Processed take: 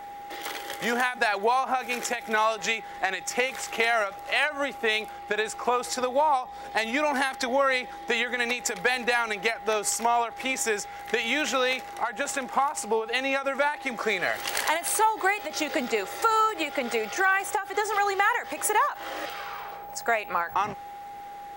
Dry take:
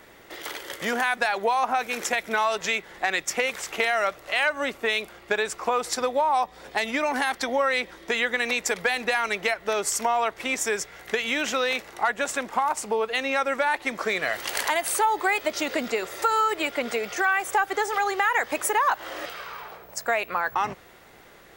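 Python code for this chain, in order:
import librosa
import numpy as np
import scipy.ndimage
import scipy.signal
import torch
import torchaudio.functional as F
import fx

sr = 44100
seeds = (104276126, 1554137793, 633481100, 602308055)

y = x + 10.0 ** (-38.0 / 20.0) * np.sin(2.0 * np.pi * 810.0 * np.arange(len(x)) / sr)
y = fx.end_taper(y, sr, db_per_s=160.0)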